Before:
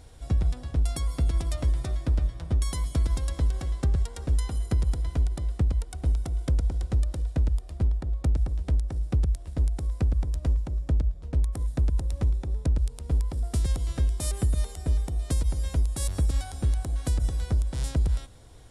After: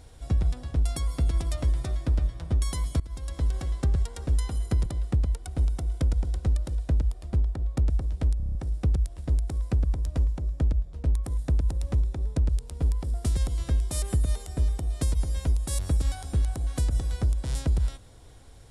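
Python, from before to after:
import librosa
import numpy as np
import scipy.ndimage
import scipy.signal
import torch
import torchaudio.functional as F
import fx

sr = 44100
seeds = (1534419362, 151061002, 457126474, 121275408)

y = fx.edit(x, sr, fx.fade_in_from(start_s=3.0, length_s=0.53, floor_db=-21.0),
    fx.cut(start_s=4.86, length_s=0.47),
    fx.stutter(start_s=8.84, slice_s=0.03, count=7), tone=tone)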